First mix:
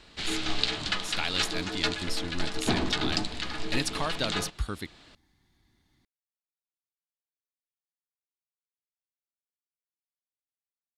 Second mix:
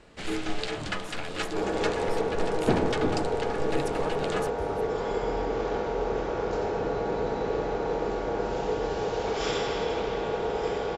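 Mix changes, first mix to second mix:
speech -8.5 dB; second sound: unmuted; master: add graphic EQ 125/500/4000 Hz +4/+7/-11 dB

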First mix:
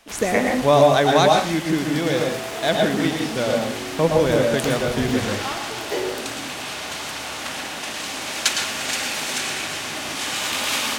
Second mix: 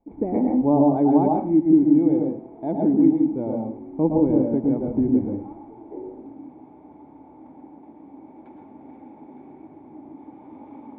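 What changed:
speech +9.0 dB; master: add vocal tract filter u

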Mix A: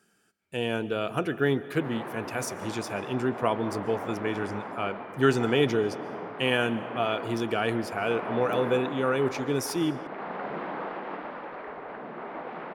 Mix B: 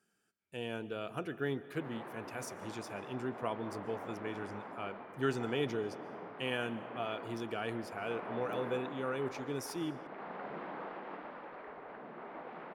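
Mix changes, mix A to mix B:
speech -11.0 dB; background -9.0 dB

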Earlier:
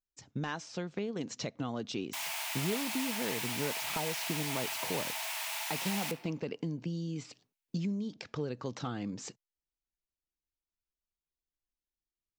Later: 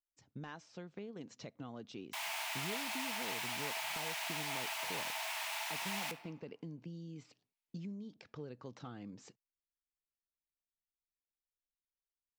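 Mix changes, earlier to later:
speech -10.5 dB; master: add high shelf 4900 Hz -7.5 dB

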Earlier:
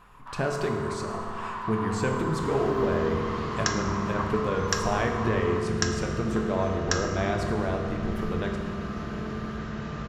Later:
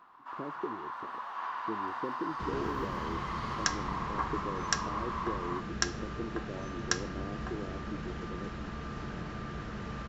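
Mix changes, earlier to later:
speech: add band-pass 330 Hz, Q 3.1; reverb: off

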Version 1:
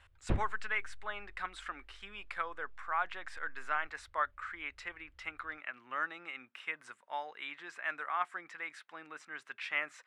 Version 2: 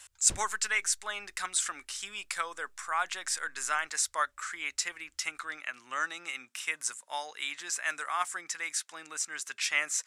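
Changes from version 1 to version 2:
background -11.0 dB; master: remove air absorption 490 m

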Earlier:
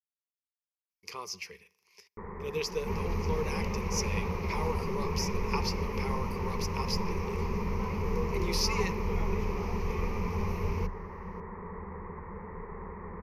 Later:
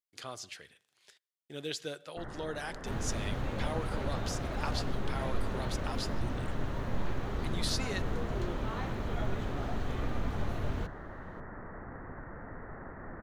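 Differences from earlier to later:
speech: entry -0.90 s; master: remove ripple EQ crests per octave 0.82, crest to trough 18 dB

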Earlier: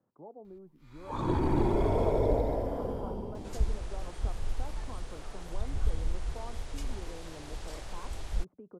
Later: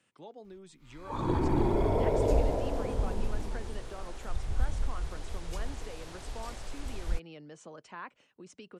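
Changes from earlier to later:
speech: remove LPF 1000 Hz 24 dB/oct; second sound: entry -1.25 s

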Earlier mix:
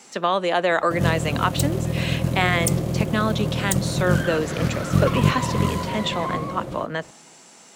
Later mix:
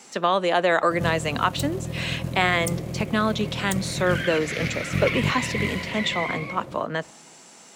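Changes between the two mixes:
first sound -7.0 dB; second sound: add resonant high-pass 2200 Hz, resonance Q 5

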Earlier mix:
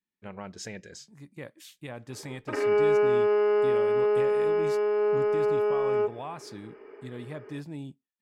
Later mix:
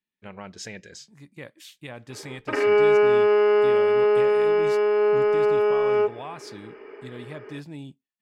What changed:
background +4.5 dB; master: add bell 3100 Hz +5 dB 1.9 oct

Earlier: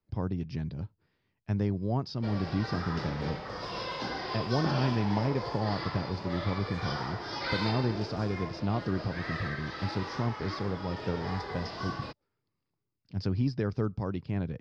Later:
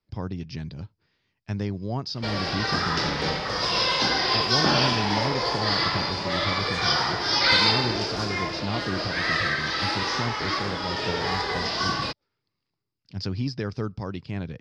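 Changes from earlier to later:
background +8.0 dB; master: add high shelf 2100 Hz +12 dB

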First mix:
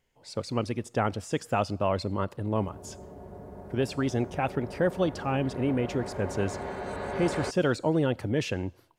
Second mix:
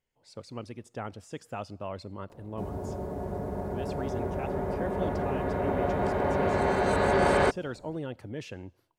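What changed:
speech -10.5 dB; background +10.0 dB

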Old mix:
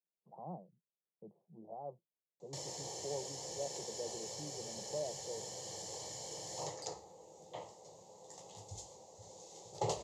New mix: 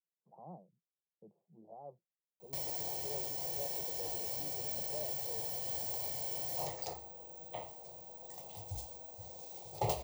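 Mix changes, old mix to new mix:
speech -4.5 dB; background: remove speaker cabinet 130–7400 Hz, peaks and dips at 450 Hz +3 dB, 690 Hz -6 dB, 2400 Hz -8 dB, 6900 Hz +9 dB

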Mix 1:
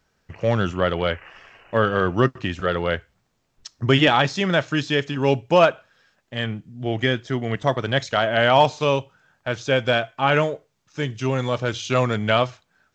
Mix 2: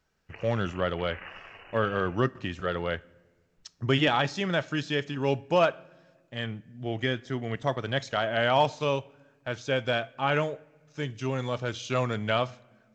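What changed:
speech -9.0 dB; reverb: on, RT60 1.5 s

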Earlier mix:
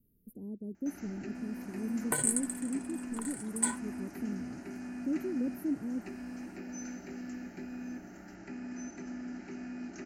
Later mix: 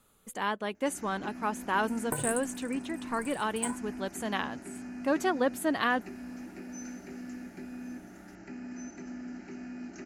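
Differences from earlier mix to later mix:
speech: remove inverse Chebyshev band-stop 1400–4600 Hz, stop band 80 dB; second sound: remove weighting filter D

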